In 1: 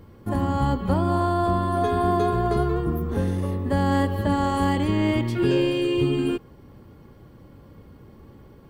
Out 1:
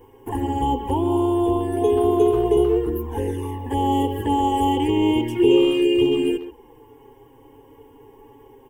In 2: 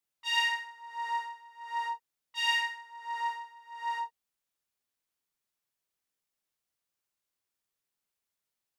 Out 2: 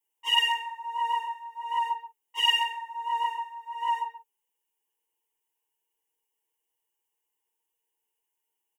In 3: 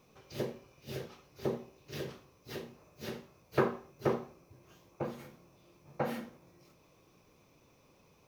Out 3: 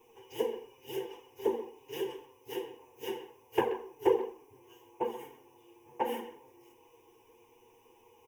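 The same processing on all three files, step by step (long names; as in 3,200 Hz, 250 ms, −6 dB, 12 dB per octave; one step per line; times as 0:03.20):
high-shelf EQ 3,900 Hz +10.5 dB
flanger swept by the level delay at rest 8.7 ms, full sweep at −18 dBFS
dynamic equaliser 1,100 Hz, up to −6 dB, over −44 dBFS, Q 1.7
phaser with its sweep stopped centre 870 Hz, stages 8
hollow resonant body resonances 480/880/2,900 Hz, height 15 dB, ringing for 20 ms
far-end echo of a speakerphone 130 ms, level −12 dB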